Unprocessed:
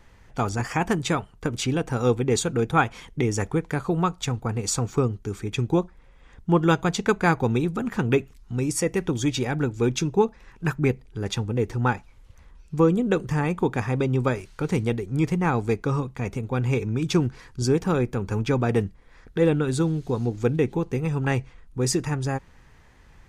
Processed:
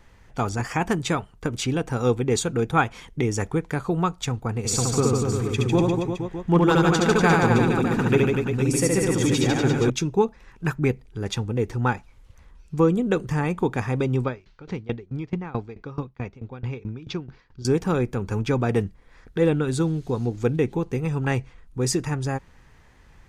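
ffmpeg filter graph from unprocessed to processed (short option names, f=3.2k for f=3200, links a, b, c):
-filter_complex "[0:a]asettb=1/sr,asplit=3[a][b][c];[a]atrim=end=4.584[d];[b]atrim=start=4.58:end=9.9,asetpts=PTS-STARTPTS,afade=t=in:d=0.004:c=qsin,afade=t=out:st=5.316:d=0.004:c=qsin,asoftclip=type=hard:threshold=-10dB,aecho=1:1:70|150.5|243.1|349.5|472|612.8:0.794|0.631|0.501|0.398|0.316|0.251,atrim=end_sample=234612[e];[c]atrim=start=9.896[f];[d][e]acrossfade=d=0.004:c1=hsin:c2=qsin[g];[g][f]acrossfade=d=0.004:c1=qsin:c2=hsin,asettb=1/sr,asplit=3[h][i][j];[h]atrim=end=14.244[k];[i]atrim=start=14.24:end=17.65,asetpts=PTS-STARTPTS,afade=t=in:d=0.004:c=qsin,afade=t=out:st=3.406:d=0.004:c=qsin,lowpass=f=5k:w=0.5412,lowpass=f=5k:w=1.3066,aeval=exprs='val(0)*pow(10,-21*if(lt(mod(4.6*n/s,1),2*abs(4.6)/1000),1-mod(4.6*n/s,1)/(2*abs(4.6)/1000),(mod(4.6*n/s,1)-2*abs(4.6)/1000)/(1-2*abs(4.6)/1000))/20)':c=same[l];[j]atrim=start=17.646[m];[k][l]acrossfade=d=0.004:c1=hsin:c2=qsin[n];[n][m]acrossfade=d=0.004:c1=qsin:c2=hsin"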